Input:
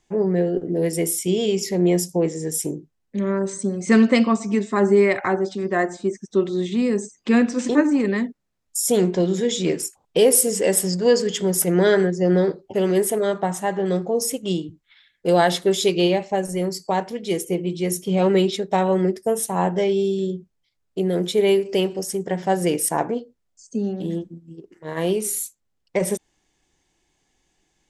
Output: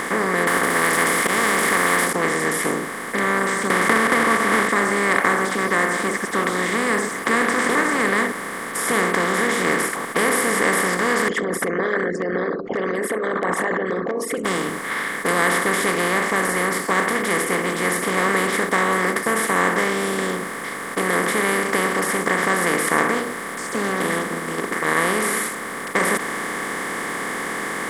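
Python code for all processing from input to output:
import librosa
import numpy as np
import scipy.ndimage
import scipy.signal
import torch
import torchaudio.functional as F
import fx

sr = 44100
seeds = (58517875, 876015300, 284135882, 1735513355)

y = fx.chain(x, sr, fx.block_float(bits=7),
    fx.auto_swell(attack_ms=117.0),
    fx.spectral_comp(ratio=10.0), at=(0.47, 2.13))
y = fx.chain(y, sr, fx.block_float(bits=3),
    fx.lowpass(hz=2400.0, slope=12),
    fx.band_squash(depth_pct=100), at=(3.7, 4.69))
y = fx.chain(y, sr, fx.envelope_sharpen(power=3.0),
    fx.dynamic_eq(hz=1600.0, q=3.8, threshold_db=-51.0, ratio=4.0, max_db=7),
    fx.lowpass(hz=3900.0, slope=12), at=(11.28, 14.45))
y = fx.bin_compress(y, sr, power=0.2)
y = fx.band_shelf(y, sr, hz=1500.0, db=13.0, octaves=1.3)
y = y * 10.0 ** (-13.5 / 20.0)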